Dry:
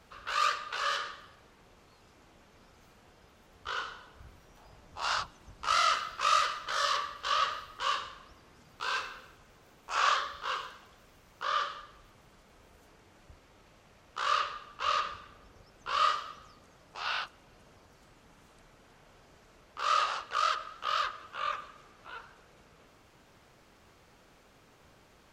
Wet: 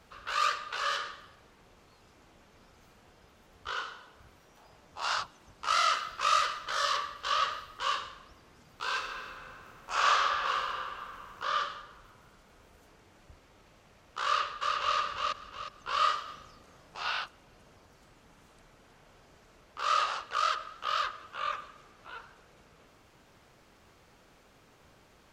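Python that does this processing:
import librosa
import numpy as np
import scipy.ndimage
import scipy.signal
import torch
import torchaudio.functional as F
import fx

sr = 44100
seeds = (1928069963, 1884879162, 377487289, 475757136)

y = fx.low_shelf(x, sr, hz=120.0, db=-9.5, at=(3.73, 6.05))
y = fx.reverb_throw(y, sr, start_s=8.97, length_s=2.46, rt60_s=2.7, drr_db=0.0)
y = fx.echo_throw(y, sr, start_s=14.25, length_s=0.71, ms=360, feedback_pct=35, wet_db=-2.5)
y = fx.doubler(y, sr, ms=38.0, db=-3.5, at=(16.24, 17.1))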